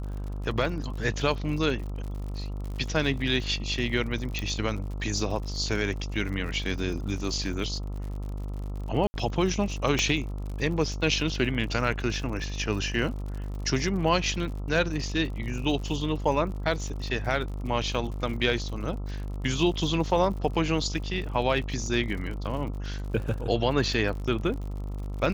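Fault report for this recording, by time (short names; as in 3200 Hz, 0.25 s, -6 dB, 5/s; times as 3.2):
buzz 50 Hz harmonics 27 -33 dBFS
crackle 61/s -36 dBFS
4.39 pop -16 dBFS
9.07–9.14 gap 70 ms
9.99 pop -12 dBFS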